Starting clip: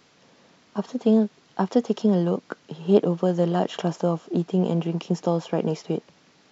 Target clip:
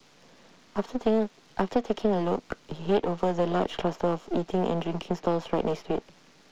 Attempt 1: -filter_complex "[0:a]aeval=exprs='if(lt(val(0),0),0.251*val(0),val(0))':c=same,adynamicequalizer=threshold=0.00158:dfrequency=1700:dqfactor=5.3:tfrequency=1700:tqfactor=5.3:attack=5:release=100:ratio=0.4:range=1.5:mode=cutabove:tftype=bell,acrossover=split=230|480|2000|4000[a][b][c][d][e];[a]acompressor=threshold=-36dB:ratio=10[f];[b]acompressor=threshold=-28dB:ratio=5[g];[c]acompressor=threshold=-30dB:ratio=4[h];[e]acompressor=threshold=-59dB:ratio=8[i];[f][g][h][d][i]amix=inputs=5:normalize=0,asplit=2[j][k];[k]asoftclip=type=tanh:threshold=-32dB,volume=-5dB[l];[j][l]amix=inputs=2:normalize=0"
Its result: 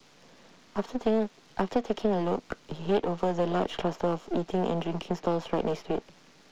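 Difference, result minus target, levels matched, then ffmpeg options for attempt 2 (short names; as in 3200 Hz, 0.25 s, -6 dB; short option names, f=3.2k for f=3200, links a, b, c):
soft clip: distortion +11 dB
-filter_complex "[0:a]aeval=exprs='if(lt(val(0),0),0.251*val(0),val(0))':c=same,adynamicequalizer=threshold=0.00158:dfrequency=1700:dqfactor=5.3:tfrequency=1700:tqfactor=5.3:attack=5:release=100:ratio=0.4:range=1.5:mode=cutabove:tftype=bell,acrossover=split=230|480|2000|4000[a][b][c][d][e];[a]acompressor=threshold=-36dB:ratio=10[f];[b]acompressor=threshold=-28dB:ratio=5[g];[c]acompressor=threshold=-30dB:ratio=4[h];[e]acompressor=threshold=-59dB:ratio=8[i];[f][g][h][d][i]amix=inputs=5:normalize=0,asplit=2[j][k];[k]asoftclip=type=tanh:threshold=-21dB,volume=-5dB[l];[j][l]amix=inputs=2:normalize=0"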